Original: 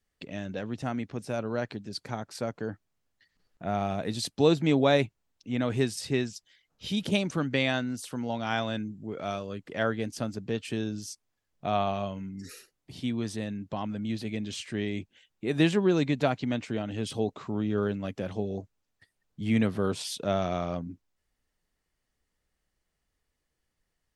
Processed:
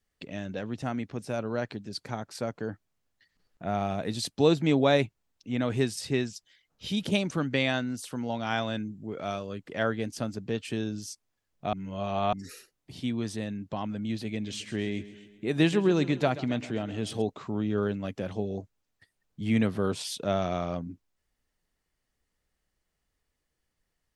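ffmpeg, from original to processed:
ffmpeg -i in.wav -filter_complex "[0:a]asettb=1/sr,asplit=3[link_01][link_02][link_03];[link_01]atrim=end=14.284[link_04];[link_02]atrim=start=14.28:end=17.22,asetpts=PTS-STARTPTS,afade=type=in:duration=0.004:curve=qsin,afade=type=out:start_time=2.936:duration=0.004:curve=qsin,aecho=1:1:131|262|393|524|655:0.158|0.0903|0.0515|0.0294|0.0167,atrim=end_sample=129654[link_05];[link_03]atrim=start=17.216[link_06];[link_04][link_05]acrossfade=duration=0.004:curve1=hsin:curve2=qsin[link_07];[link_07][link_06]acrossfade=duration=0.004:curve1=qsin:curve2=hsin,asplit=3[link_08][link_09][link_10];[link_08]atrim=end=11.732[link_11];[link_09]atrim=start=11.728:end=12.332,asetpts=PTS-STARTPTS,areverse[link_12];[link_10]atrim=start=12.328[link_13];[link_11][link_12]acrossfade=duration=0.004:curve1=hsin:curve2=hsin[link_14];[link_14][link_13]acrossfade=duration=0.004:curve1=hsin:curve2=hsin" out.wav

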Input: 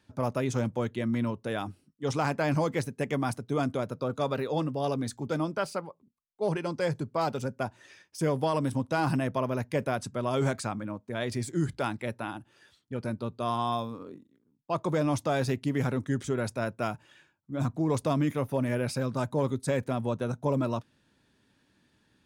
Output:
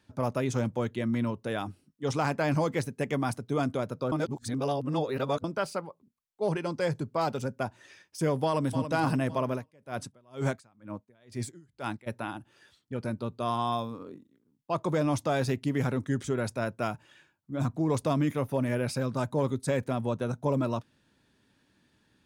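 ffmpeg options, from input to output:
ffmpeg -i in.wav -filter_complex "[0:a]asplit=2[link_01][link_02];[link_02]afade=type=in:start_time=8.45:duration=0.01,afade=type=out:start_time=8.9:duration=0.01,aecho=0:1:280|560|840|1120|1400|1680:0.354813|0.195147|0.107331|0.0590321|0.0324676|0.0178572[link_03];[link_01][link_03]amix=inputs=2:normalize=0,asplit=3[link_04][link_05][link_06];[link_04]afade=type=out:start_time=9.53:duration=0.02[link_07];[link_05]aeval=exprs='val(0)*pow(10,-32*(0.5-0.5*cos(2*PI*2.1*n/s))/20)':channel_layout=same,afade=type=in:start_time=9.53:duration=0.02,afade=type=out:start_time=12.06:duration=0.02[link_08];[link_06]afade=type=in:start_time=12.06:duration=0.02[link_09];[link_07][link_08][link_09]amix=inputs=3:normalize=0,asplit=3[link_10][link_11][link_12];[link_10]atrim=end=4.122[link_13];[link_11]atrim=start=4.118:end=5.442,asetpts=PTS-STARTPTS,areverse[link_14];[link_12]atrim=start=5.438[link_15];[link_13][link_14]acrossfade=duration=0.004:curve1=hsin:curve2=hsin[link_16];[link_16][link_15]acrossfade=duration=0.004:curve1=hsin:curve2=hsin" out.wav

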